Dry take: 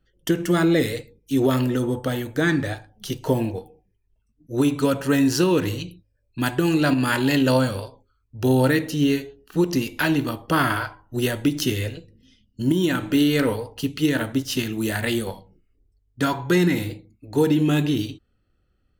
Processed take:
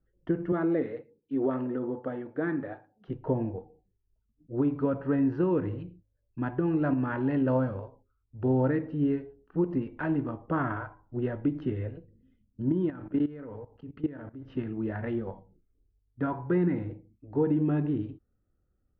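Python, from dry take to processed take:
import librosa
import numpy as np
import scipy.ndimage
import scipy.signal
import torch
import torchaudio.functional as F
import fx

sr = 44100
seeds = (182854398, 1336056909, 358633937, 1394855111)

y = fx.highpass(x, sr, hz=230.0, slope=12, at=(0.52, 3.08))
y = fx.level_steps(y, sr, step_db=17, at=(12.9, 14.43))
y = scipy.signal.sosfilt(scipy.signal.bessel(4, 1100.0, 'lowpass', norm='mag', fs=sr, output='sos'), y)
y = F.gain(torch.from_numpy(y), -6.5).numpy()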